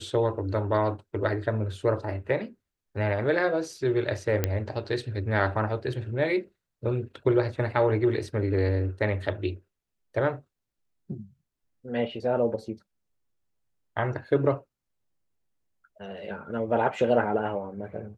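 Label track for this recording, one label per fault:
4.440000	4.440000	pop -10 dBFS

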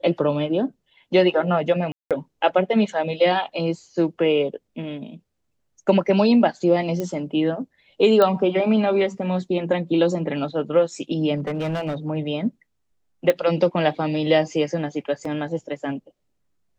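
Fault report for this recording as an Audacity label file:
1.920000	2.110000	gap 0.187 s
7.000000	7.000000	pop -14 dBFS
8.220000	8.220000	pop -8 dBFS
11.370000	11.950000	clipped -22 dBFS
13.300000	13.300000	pop -8 dBFS
15.250000	15.250000	gap 3.6 ms

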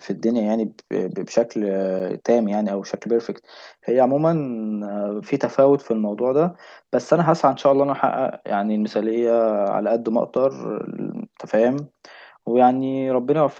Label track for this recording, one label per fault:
1.990000	2.000000	gap 7.7 ms

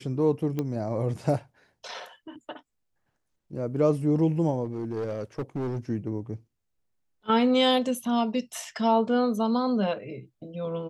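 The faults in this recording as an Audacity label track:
0.590000	0.590000	pop -17 dBFS
4.650000	5.790000	clipped -26.5 dBFS

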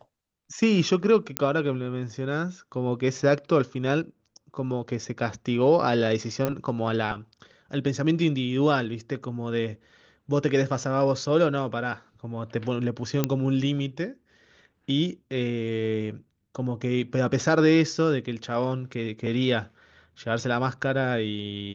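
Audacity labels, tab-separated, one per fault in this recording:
1.370000	1.370000	pop -5 dBFS
6.450000	6.450000	pop -12 dBFS
13.240000	13.240000	pop -8 dBFS

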